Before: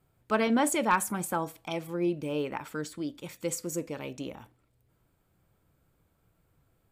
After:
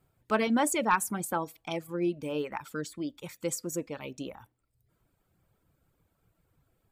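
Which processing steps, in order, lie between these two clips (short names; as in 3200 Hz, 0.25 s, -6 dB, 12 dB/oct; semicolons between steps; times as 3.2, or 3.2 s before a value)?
reverb removal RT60 0.77 s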